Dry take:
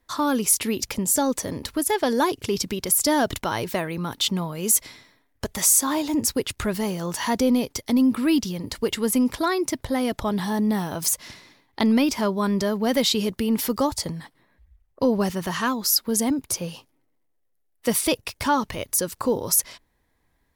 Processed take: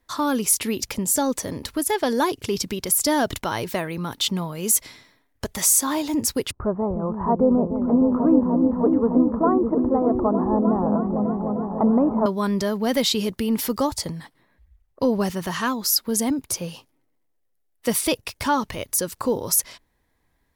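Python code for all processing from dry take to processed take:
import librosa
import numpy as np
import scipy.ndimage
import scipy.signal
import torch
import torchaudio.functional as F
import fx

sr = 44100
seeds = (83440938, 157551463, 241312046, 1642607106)

y = fx.chain(x, sr, fx.cheby1_lowpass(hz=1200.0, order=4),
    fx.dynamic_eq(hz=690.0, q=1.0, threshold_db=-37.0, ratio=4.0, max_db=6),
    fx.echo_opening(ms=304, hz=200, octaves=1, feedback_pct=70, wet_db=0), at=(6.51, 12.26))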